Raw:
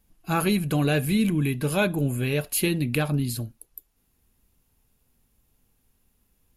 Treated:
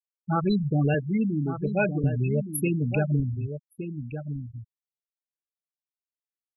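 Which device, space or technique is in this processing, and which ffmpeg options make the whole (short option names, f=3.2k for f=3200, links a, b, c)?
low shelf boost with a cut just above: -filter_complex "[0:a]asettb=1/sr,asplit=3[a][b][c];[a]atrim=end=0.944[d];[b]atrim=start=0.94:end=2.04,asetpts=PTS-STARTPTS,afade=t=in:d=0.004:c=qsin,afade=t=out:st=1.096:d=0.004:c=qsin,highpass=180[e];[c]atrim=start=2.036[f];[d][e]acrossfade=d=0.004:c1=hsin:c2=qsin[g];[g][f]acrossfade=d=0.004:c1=qsin:c2=hsin,lowshelf=f=99:g=7,equalizer=f=270:t=o:w=0.93:g=-3,afftfilt=real='re*gte(hypot(re,im),0.158)':imag='im*gte(hypot(re,im),0.158)':win_size=1024:overlap=0.75,asplit=2[h][i];[i]adelay=1166,volume=-9dB,highshelf=f=4k:g=-26.2[j];[h][j]amix=inputs=2:normalize=0"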